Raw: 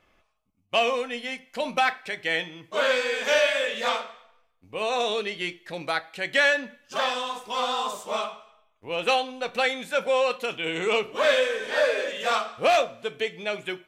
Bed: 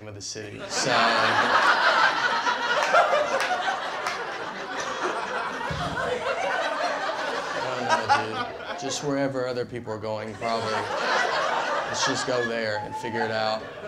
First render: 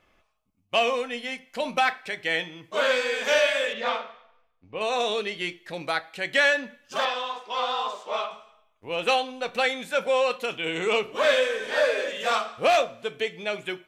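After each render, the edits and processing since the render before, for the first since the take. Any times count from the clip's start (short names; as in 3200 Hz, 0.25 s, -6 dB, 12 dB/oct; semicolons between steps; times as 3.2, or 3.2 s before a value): 3.73–4.81 air absorption 170 m; 7.05–8.31 three-band isolator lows -20 dB, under 300 Hz, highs -22 dB, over 5400 Hz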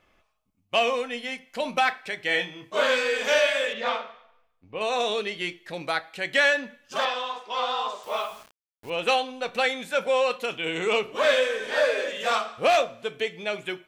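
2.26–3.27 doubler 27 ms -5.5 dB; 8.03–8.9 requantised 8-bit, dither none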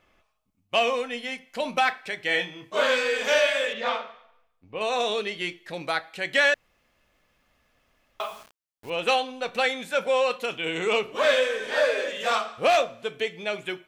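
6.54–8.2 room tone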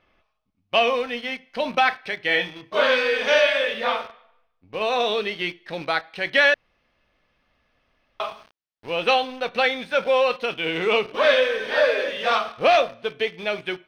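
in parallel at -6 dB: bit-crush 6-bit; on the sum: polynomial smoothing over 15 samples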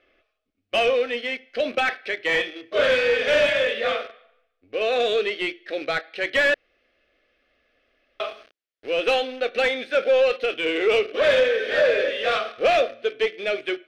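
fixed phaser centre 390 Hz, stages 4; overdrive pedal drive 16 dB, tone 1300 Hz, clips at -8 dBFS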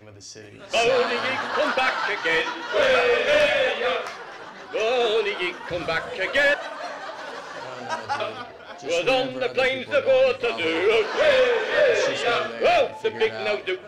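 add bed -6.5 dB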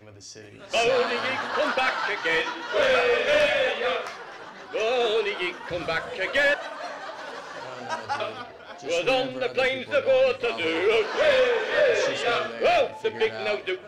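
gain -2 dB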